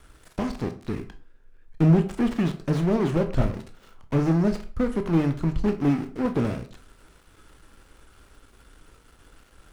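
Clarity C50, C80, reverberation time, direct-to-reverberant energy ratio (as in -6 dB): 13.5 dB, 18.0 dB, 0.40 s, 6.5 dB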